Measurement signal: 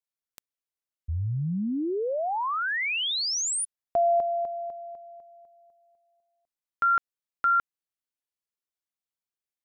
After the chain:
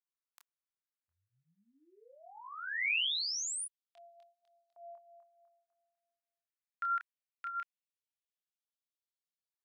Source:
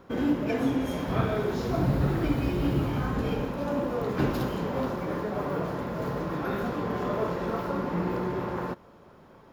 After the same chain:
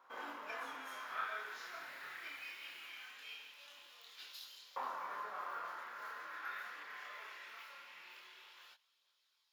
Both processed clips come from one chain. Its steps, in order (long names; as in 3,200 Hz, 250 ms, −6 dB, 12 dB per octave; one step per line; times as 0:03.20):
multi-voice chorus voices 2, 0.22 Hz, delay 27 ms, depth 4 ms
auto-filter high-pass saw up 0.21 Hz 980–4,200 Hz
level −7.5 dB